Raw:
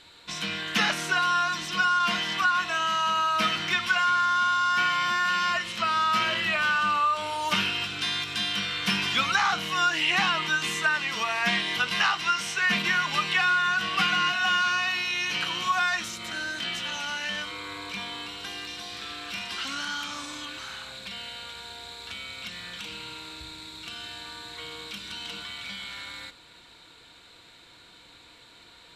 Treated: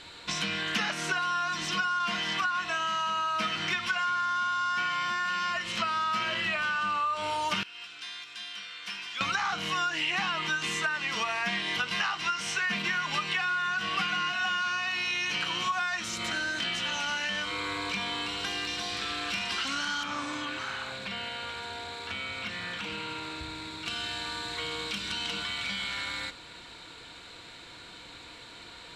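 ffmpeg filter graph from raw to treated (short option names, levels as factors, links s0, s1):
-filter_complex "[0:a]asettb=1/sr,asplit=3[s0][s1][s2];[s0]atrim=end=7.634[s3];[s1]atrim=start=7.63:end=9.21,asetpts=PTS-STARTPTS,afade=t=in:d=0.004:c=qsin,afade=t=out:st=1.576:d=0.004:c=qsin,lowpass=f=1100:p=1,aderivative[s4];[s2]atrim=start=9.206[s5];[s3][s4]acrossfade=d=0.004:c1=hsin:c2=qsin[s6];[s6][s5]acrossfade=d=0.004:c1=qsin:c2=hsin,asettb=1/sr,asplit=3[s7][s8][s9];[s7]atrim=end=20.034[s10];[s8]atrim=start=20.03:end=23.86,asetpts=PTS-STARTPTS,afade=t=in:d=0.004:c=qsin,afade=t=out:st=3.826:d=0.004:c=qsin,acrossover=split=2700[s11][s12];[s12]acompressor=threshold=0.00398:ratio=4:attack=1:release=60[s13];[s11][s13]amix=inputs=2:normalize=0,bandreject=f=60:t=h:w=6,bandreject=f=120:t=h:w=6,bandreject=f=180:t=h:w=6[s14];[s9]atrim=start=23.856[s15];[s10][s14]acrossfade=d=0.004:c1=hsin:c2=qsin[s16];[s16][s15]acrossfade=d=0.004:c1=qsin:c2=hsin,equalizer=f=3700:t=o:w=0.33:g=-2.5,acompressor=threshold=0.0178:ratio=4,lowpass=9000,volume=2"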